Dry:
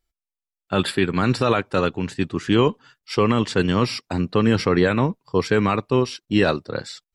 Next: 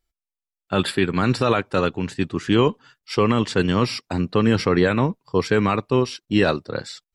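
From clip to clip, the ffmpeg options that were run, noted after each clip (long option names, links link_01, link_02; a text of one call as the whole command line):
ffmpeg -i in.wav -af anull out.wav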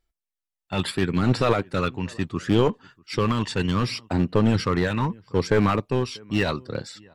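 ffmpeg -i in.wav -filter_complex "[0:a]aphaser=in_gain=1:out_gain=1:delay=1.1:decay=0.44:speed=0.71:type=sinusoidal,asplit=2[link_01][link_02];[link_02]adelay=641.4,volume=-28dB,highshelf=frequency=4000:gain=-14.4[link_03];[link_01][link_03]amix=inputs=2:normalize=0,aeval=exprs='clip(val(0),-1,0.178)':channel_layout=same,volume=-3.5dB" out.wav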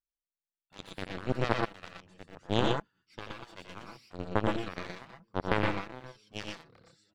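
ffmpeg -i in.wav -filter_complex "[0:a]aeval=exprs='0.501*(cos(1*acos(clip(val(0)/0.501,-1,1)))-cos(1*PI/2))+0.178*(cos(3*acos(clip(val(0)/0.501,-1,1)))-cos(3*PI/2))':channel_layout=same,asplit=2[link_01][link_02];[link_02]aecho=0:1:85|117|123:0.422|0.596|0.531[link_03];[link_01][link_03]amix=inputs=2:normalize=0,volume=-3dB" out.wav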